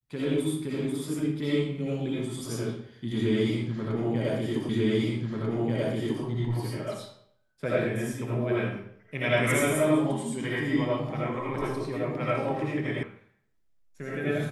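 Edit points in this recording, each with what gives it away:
0:04.69: the same again, the last 1.54 s
0:13.03: cut off before it has died away

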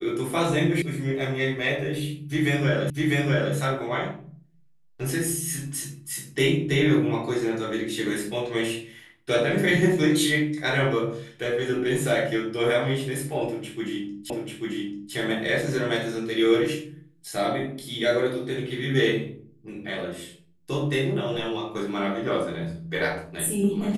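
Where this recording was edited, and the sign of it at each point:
0:00.82: cut off before it has died away
0:02.90: the same again, the last 0.65 s
0:14.30: the same again, the last 0.84 s

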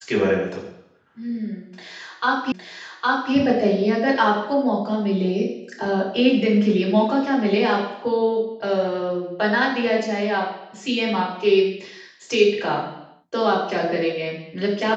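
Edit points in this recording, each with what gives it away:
0:02.52: the same again, the last 0.81 s

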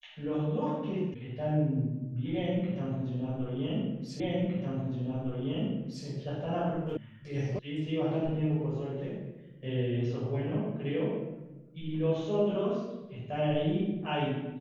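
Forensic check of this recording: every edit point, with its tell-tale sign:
0:01.14: cut off before it has died away
0:04.20: the same again, the last 1.86 s
0:06.97: cut off before it has died away
0:07.59: cut off before it has died away

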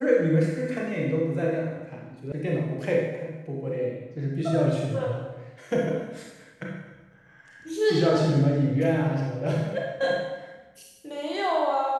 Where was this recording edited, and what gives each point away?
0:02.32: cut off before it has died away

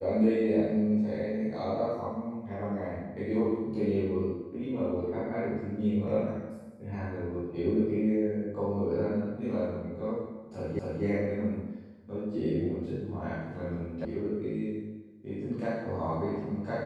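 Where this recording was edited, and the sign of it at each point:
0:10.79: the same again, the last 0.25 s
0:14.05: cut off before it has died away

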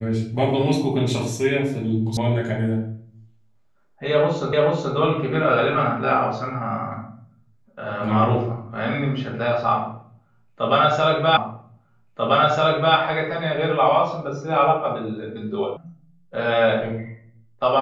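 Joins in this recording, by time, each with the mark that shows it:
0:02.17: cut off before it has died away
0:04.53: the same again, the last 0.43 s
0:11.37: the same again, the last 1.59 s
0:15.77: cut off before it has died away

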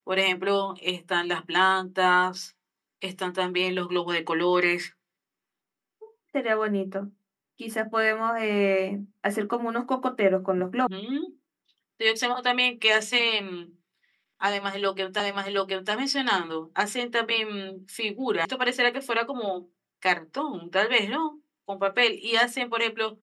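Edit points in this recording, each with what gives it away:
0:10.87: cut off before it has died away
0:15.20: the same again, the last 0.72 s
0:18.45: cut off before it has died away

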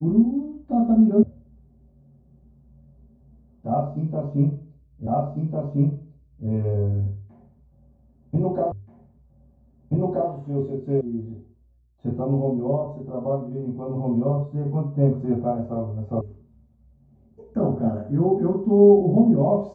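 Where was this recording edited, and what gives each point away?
0:01.23: cut off before it has died away
0:05.07: the same again, the last 1.4 s
0:08.72: the same again, the last 1.58 s
0:11.01: cut off before it has died away
0:16.21: cut off before it has died away

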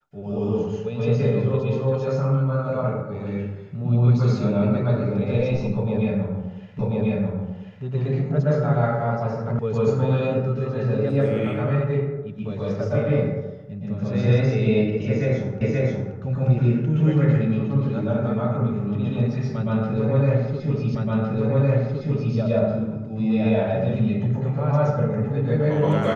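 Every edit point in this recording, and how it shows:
0:06.79: the same again, the last 1.04 s
0:09.59: cut off before it has died away
0:15.61: the same again, the last 0.53 s
0:20.95: the same again, the last 1.41 s

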